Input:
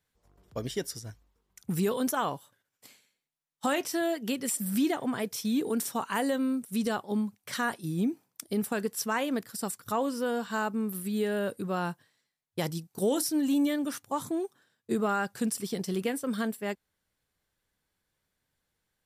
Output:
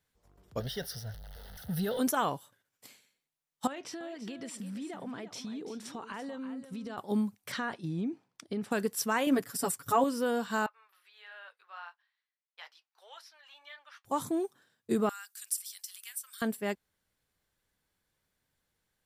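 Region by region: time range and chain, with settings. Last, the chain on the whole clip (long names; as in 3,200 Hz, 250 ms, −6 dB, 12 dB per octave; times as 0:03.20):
0:00.60–0:01.99: converter with a step at zero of −40 dBFS + phaser with its sweep stopped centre 1,600 Hz, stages 8
0:03.67–0:06.98: low-pass filter 4,600 Hz + downward compressor, threshold −38 dBFS + single-tap delay 337 ms −11.5 dB
0:07.52–0:08.71: low-pass filter 4,100 Hz + downward compressor 3 to 1, threshold −31 dBFS
0:09.26–0:10.04: parametric band 4,000 Hz −4.5 dB 0.57 octaves + comb filter 7.1 ms, depth 100%
0:10.66–0:14.05: Bessel high-pass filter 1,400 Hz, order 6 + flanger 1.6 Hz, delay 5.5 ms, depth 4 ms, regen −50% + high-frequency loss of the air 290 metres
0:15.09–0:16.42: high-pass filter 1,100 Hz 24 dB per octave + first difference + floating-point word with a short mantissa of 6 bits
whole clip: no processing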